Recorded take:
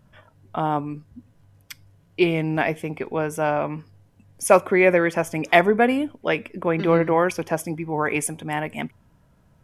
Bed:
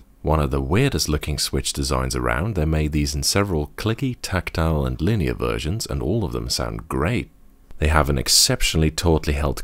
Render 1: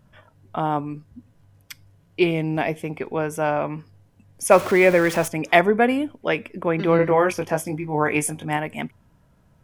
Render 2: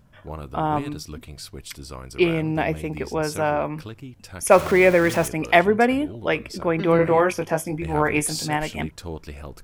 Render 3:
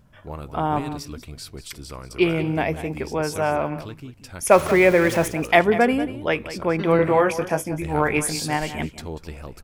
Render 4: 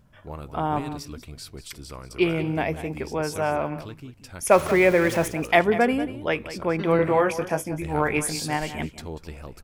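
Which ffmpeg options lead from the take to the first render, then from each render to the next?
-filter_complex "[0:a]asettb=1/sr,asplit=3[a][b][c];[a]atrim=end=2.314[d];[b]atrim=start=2.31:end=2.84,asetpts=PTS-STARTPTS,afade=t=in:d=0.004:c=qsin,afade=t=out:st=0.526:d=0.004:c=qsin,equalizer=f=1.5k:w=1.5:g=-5.5[e];[c]atrim=start=2.836[f];[d][e]acrossfade=d=0.004:c1=hsin:c2=qsin[g];[g][f]acrossfade=d=0.004:c1=qsin:c2=hsin,asettb=1/sr,asplit=3[h][i][j];[h]atrim=end=4.514[k];[i]atrim=start=4.51:end=5.28,asetpts=PTS-STARTPTS,afade=t=in:d=0.004:c=qsin,afade=t=out:st=0.766:d=0.004:c=qsin,aeval=exprs='val(0)+0.5*0.0473*sgn(val(0))':c=same[l];[j]atrim=start=5.276[m];[k][l]acrossfade=d=0.004:c1=hsin:c2=qsin[n];[n][m]acrossfade=d=0.004:c1=qsin:c2=hsin,asettb=1/sr,asplit=3[o][p][q];[o]atrim=end=6.974[r];[p]atrim=start=6.97:end=8.57,asetpts=PTS-STARTPTS,afade=t=in:d=0.004:c=qsin,afade=t=out:st=1.596:d=0.004:c=qsin,asplit=2[s][t];[t]adelay=20,volume=-5dB[u];[s][u]amix=inputs=2:normalize=0,atrim=end_sample=70560[v];[q]atrim=start=8.566[w];[r][v]acrossfade=d=0.004:c1=hsin:c2=qsin[x];[x][w]acrossfade=d=0.004:c1=qsin:c2=hsin"
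-filter_complex "[1:a]volume=-15.5dB[a];[0:a][a]amix=inputs=2:normalize=0"
-af "aecho=1:1:189:0.211"
-af "volume=-2.5dB"

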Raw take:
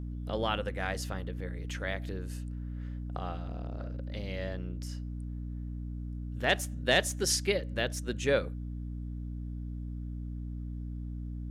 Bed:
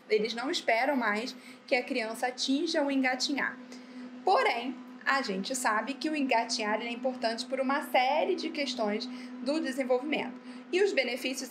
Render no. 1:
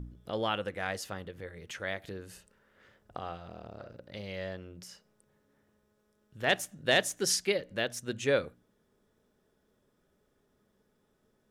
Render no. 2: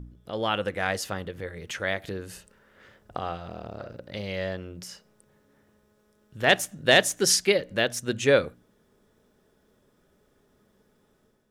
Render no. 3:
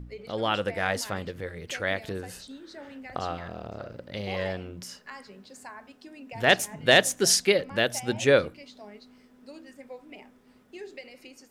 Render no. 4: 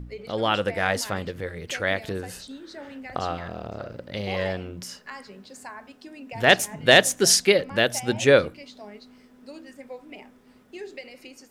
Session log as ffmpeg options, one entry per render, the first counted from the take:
-af "bandreject=f=60:t=h:w=4,bandreject=f=120:t=h:w=4,bandreject=f=180:t=h:w=4,bandreject=f=240:t=h:w=4,bandreject=f=300:t=h:w=4"
-af "dynaudnorm=f=320:g=3:m=7.5dB"
-filter_complex "[1:a]volume=-15.5dB[a];[0:a][a]amix=inputs=2:normalize=0"
-af "volume=3.5dB"

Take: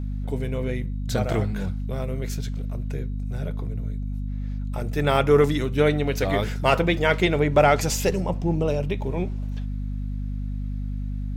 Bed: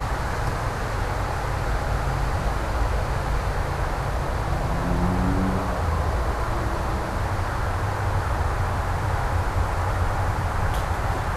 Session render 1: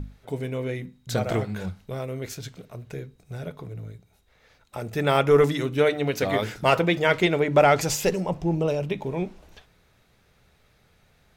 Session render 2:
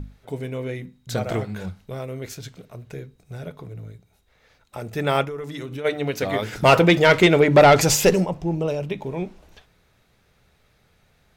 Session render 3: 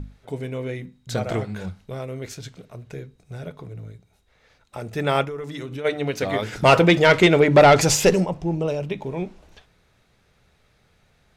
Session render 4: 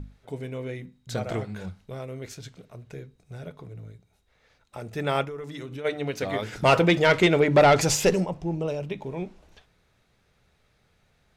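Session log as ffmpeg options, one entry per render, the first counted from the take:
-af "bandreject=f=50:t=h:w=6,bandreject=f=100:t=h:w=6,bandreject=f=150:t=h:w=6,bandreject=f=200:t=h:w=6,bandreject=f=250:t=h:w=6,bandreject=f=300:t=h:w=6"
-filter_complex "[0:a]asplit=3[a][b][c];[a]afade=t=out:st=5.24:d=0.02[d];[b]acompressor=threshold=-28dB:ratio=10:attack=3.2:release=140:knee=1:detection=peak,afade=t=in:st=5.24:d=0.02,afade=t=out:st=5.84:d=0.02[e];[c]afade=t=in:st=5.84:d=0.02[f];[d][e][f]amix=inputs=3:normalize=0,asplit=3[g][h][i];[g]afade=t=out:st=6.52:d=0.02[j];[h]aeval=exprs='0.473*sin(PI/2*1.58*val(0)/0.473)':c=same,afade=t=in:st=6.52:d=0.02,afade=t=out:st=8.24:d=0.02[k];[i]afade=t=in:st=8.24:d=0.02[l];[j][k][l]amix=inputs=3:normalize=0"
-af "lowpass=11k"
-af "volume=-4.5dB"

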